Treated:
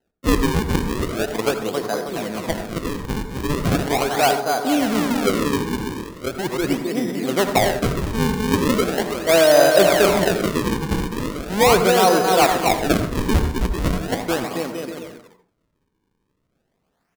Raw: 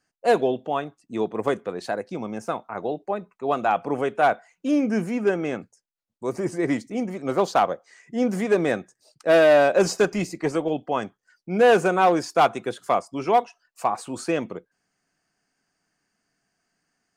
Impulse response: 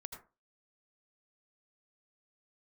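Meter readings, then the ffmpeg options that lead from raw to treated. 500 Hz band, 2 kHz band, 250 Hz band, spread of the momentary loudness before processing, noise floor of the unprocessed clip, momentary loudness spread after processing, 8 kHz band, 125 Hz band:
+3.0 dB, +4.5 dB, +5.0 dB, 13 LU, −80 dBFS, 12 LU, +12.0 dB, +10.5 dB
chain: -filter_complex "[0:a]aecho=1:1:270|459|591.3|683.9|748.7:0.631|0.398|0.251|0.158|0.1,acrusher=samples=38:mix=1:aa=0.000001:lfo=1:lforange=60.8:lforate=0.39,asplit=2[link_01][link_02];[1:a]atrim=start_sample=2205[link_03];[link_02][link_03]afir=irnorm=-1:irlink=0,volume=6.5dB[link_04];[link_01][link_04]amix=inputs=2:normalize=0,volume=-5.5dB"

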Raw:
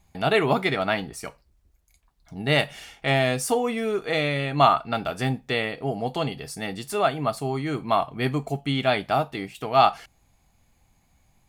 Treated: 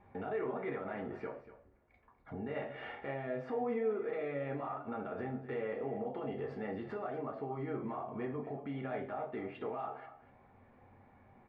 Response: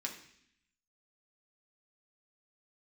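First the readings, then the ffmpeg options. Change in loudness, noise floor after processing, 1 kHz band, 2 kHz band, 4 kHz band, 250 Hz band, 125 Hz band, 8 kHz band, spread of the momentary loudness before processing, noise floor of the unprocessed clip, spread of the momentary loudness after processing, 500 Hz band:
−15.5 dB, −65 dBFS, −18.5 dB, −19.5 dB, below −30 dB, −12.0 dB, −17.5 dB, below −40 dB, 12 LU, −65 dBFS, 7 LU, −12.0 dB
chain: -filter_complex "[0:a]lowpass=frequency=1700:width=0.5412,lowpass=frequency=1700:width=1.3066,lowshelf=frequency=83:gain=-8.5,acompressor=threshold=-38dB:ratio=5,alimiter=level_in=16dB:limit=-24dB:level=0:latency=1:release=59,volume=-16dB,aecho=1:1:240:0.2[link_01];[1:a]atrim=start_sample=2205,asetrate=83790,aresample=44100[link_02];[link_01][link_02]afir=irnorm=-1:irlink=0,volume=15.5dB"

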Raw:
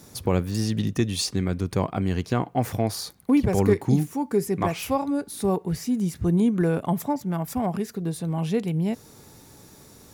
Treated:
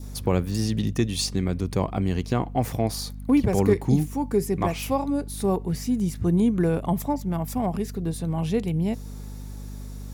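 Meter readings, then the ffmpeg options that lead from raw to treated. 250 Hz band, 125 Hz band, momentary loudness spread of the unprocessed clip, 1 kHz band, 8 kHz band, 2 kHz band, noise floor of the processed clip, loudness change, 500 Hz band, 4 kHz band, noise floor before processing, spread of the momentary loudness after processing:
0.0 dB, +0.5 dB, 7 LU, −0.5 dB, 0.0 dB, −1.5 dB, −36 dBFS, 0.0 dB, 0.0 dB, 0.0 dB, −50 dBFS, 9 LU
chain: -af "aeval=exprs='val(0)+0.0178*(sin(2*PI*50*n/s)+sin(2*PI*2*50*n/s)/2+sin(2*PI*3*50*n/s)/3+sin(2*PI*4*50*n/s)/4+sin(2*PI*5*50*n/s)/5)':channel_layout=same,adynamicequalizer=threshold=0.00316:dfrequency=1500:dqfactor=2.5:tfrequency=1500:tqfactor=2.5:attack=5:release=100:ratio=0.375:range=2.5:mode=cutabove:tftype=bell"

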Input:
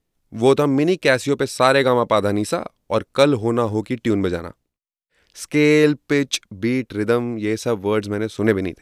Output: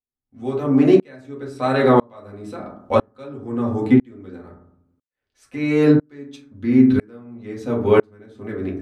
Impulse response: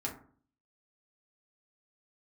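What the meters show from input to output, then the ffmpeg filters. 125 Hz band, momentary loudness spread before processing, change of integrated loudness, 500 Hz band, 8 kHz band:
−0.5 dB, 9 LU, +1.0 dB, −2.5 dB, below −15 dB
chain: -filter_complex "[0:a]highshelf=frequency=5000:gain=-10,bandreject=frequency=5300:width=21,asplit=2[link_01][link_02];[link_02]alimiter=limit=-13dB:level=0:latency=1:release=478,volume=1dB[link_03];[link_01][link_03]amix=inputs=2:normalize=0[link_04];[1:a]atrim=start_sample=2205,asetrate=41454,aresample=44100[link_05];[link_04][link_05]afir=irnorm=-1:irlink=0,aeval=exprs='val(0)*pow(10,-36*if(lt(mod(-1*n/s,1),2*abs(-1)/1000),1-mod(-1*n/s,1)/(2*abs(-1)/1000),(mod(-1*n/s,1)-2*abs(-1)/1000)/(1-2*abs(-1)/1000))/20)':channel_layout=same,volume=-1dB"

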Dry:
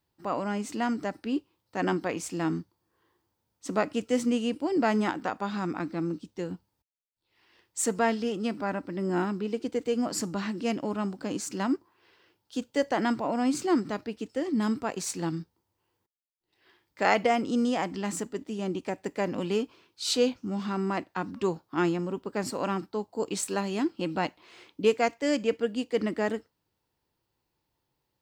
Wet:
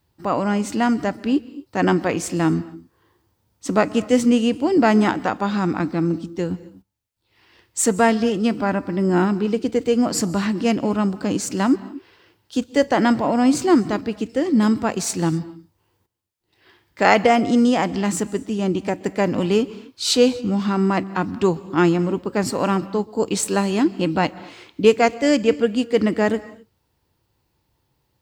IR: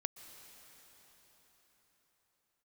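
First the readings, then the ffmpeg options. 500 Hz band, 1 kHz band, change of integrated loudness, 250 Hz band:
+9.0 dB, +9.0 dB, +9.5 dB, +10.5 dB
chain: -filter_complex "[0:a]asplit=2[link_01][link_02];[link_02]equalizer=frequency=76:width_type=o:width=2.5:gain=12[link_03];[1:a]atrim=start_sample=2205,afade=type=out:start_time=0.32:duration=0.01,atrim=end_sample=14553[link_04];[link_03][link_04]afir=irnorm=-1:irlink=0,volume=1dB[link_05];[link_01][link_05]amix=inputs=2:normalize=0,volume=3dB"

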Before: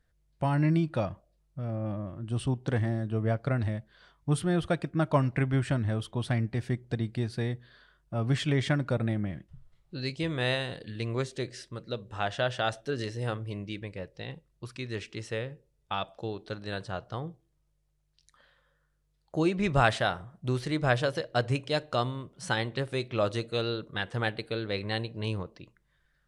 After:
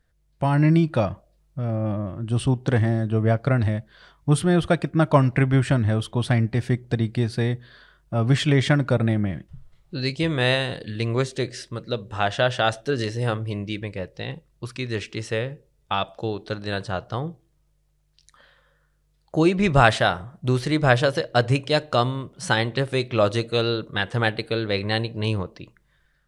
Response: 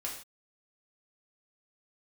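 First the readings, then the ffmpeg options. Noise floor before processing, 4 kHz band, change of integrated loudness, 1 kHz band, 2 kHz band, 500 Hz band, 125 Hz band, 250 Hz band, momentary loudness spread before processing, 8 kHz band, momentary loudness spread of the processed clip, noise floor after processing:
−73 dBFS, +8.0 dB, +8.0 dB, +8.0 dB, +8.0 dB, +8.0 dB, +8.0 dB, +8.0 dB, 12 LU, +8.0 dB, 12 LU, −66 dBFS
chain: -af "dynaudnorm=framelen=190:gausssize=5:maxgain=4dB,volume=4dB"

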